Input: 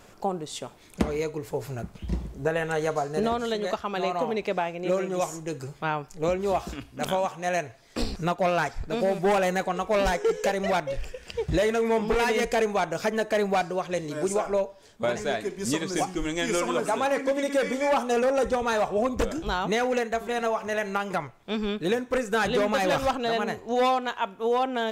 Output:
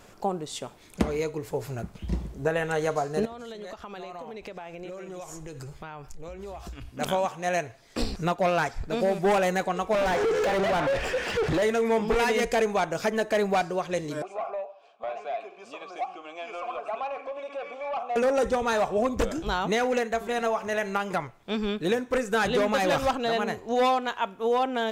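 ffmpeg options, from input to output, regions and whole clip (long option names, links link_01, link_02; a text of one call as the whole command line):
ffmpeg -i in.wav -filter_complex "[0:a]asettb=1/sr,asplit=3[link_01][link_02][link_03];[link_01]atrim=end=3.254[link_04];[link_02]atrim=start=3.25:end=6.89,asetpts=PTS-STARTPTS,afade=type=in:duration=0.004:curve=qsin,afade=type=out:start_time=3.636:duration=0.004:curve=qsin,asubboost=boost=7.5:cutoff=83,acompressor=threshold=-35dB:ratio=16:attack=3.2:release=140:knee=1:detection=peak[link_05];[link_03]atrim=start=6.886[link_06];[link_04][link_05]acrossfade=duration=0.004:curve1=hsin:curve2=qsin[link_07];[link_07][link_06]acrossfade=duration=0.004:curve1=qsin:curve2=hsin,asettb=1/sr,asplit=3[link_08][link_09][link_10];[link_08]atrim=end=9.934[link_11];[link_09]atrim=start=9.93:end=11.62,asetpts=PTS-STARTPTS,afade=type=in:duration=0.004:curve=qsin,afade=type=out:start_time=1.686:duration=0.004:curve=qsin,acompressor=threshold=-30dB:ratio=4:attack=3.2:release=140:knee=1:detection=peak,asplit=2[link_12][link_13];[link_13]highpass=frequency=720:poles=1,volume=34dB,asoftclip=type=tanh:threshold=-17dB[link_14];[link_12][link_14]amix=inputs=2:normalize=0,lowpass=frequency=1500:poles=1,volume=-6dB[link_15];[link_10]atrim=start=11.616[link_16];[link_11][link_15]acrossfade=duration=0.004:curve1=hsin:curve2=qsin[link_17];[link_17][link_16]acrossfade=duration=0.004:curve1=qsin:curve2=hsin,asettb=1/sr,asplit=3[link_18][link_19][link_20];[link_18]atrim=end=14.224[link_21];[link_19]atrim=start=14.22:end=18.16,asetpts=PTS-STARTPTS,afade=type=in:duration=0.004:curve=qsin,afade=type=out:start_time=3.936:duration=0.004:curve=qsin,acompressor=threshold=-33dB:ratio=2:attack=3.2:release=140:knee=1:detection=peak,asplit=3[link_22][link_23][link_24];[link_22]bandpass=frequency=730:width_type=q:width=8,volume=0dB[link_25];[link_23]bandpass=frequency=1090:width_type=q:width=8,volume=-6dB[link_26];[link_24]bandpass=frequency=2440:width_type=q:width=8,volume=-9dB[link_27];[link_25][link_26][link_27]amix=inputs=3:normalize=0,asplit=2[link_28][link_29];[link_29]highpass=frequency=720:poles=1,volume=19dB,asoftclip=type=tanh:threshold=-20dB[link_30];[link_28][link_30]amix=inputs=2:normalize=0,lowpass=frequency=3800:poles=1,volume=-6dB[link_31];[link_20]atrim=start=18.156[link_32];[link_21][link_31]acrossfade=duration=0.004:curve1=hsin:curve2=qsin[link_33];[link_33][link_32]acrossfade=duration=0.004:curve1=qsin:curve2=hsin" out.wav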